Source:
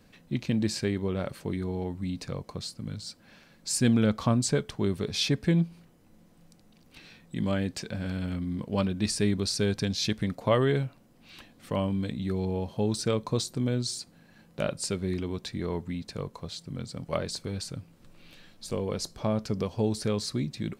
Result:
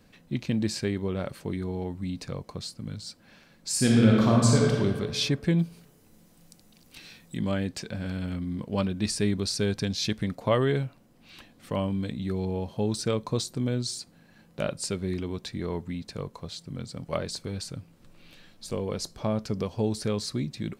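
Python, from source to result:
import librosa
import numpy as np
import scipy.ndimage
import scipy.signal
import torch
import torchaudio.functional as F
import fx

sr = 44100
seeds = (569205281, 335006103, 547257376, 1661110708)

y = fx.reverb_throw(x, sr, start_s=3.72, length_s=1.03, rt60_s=1.8, drr_db=-3.0)
y = fx.high_shelf(y, sr, hz=4100.0, db=11.0, at=(5.59, 7.37))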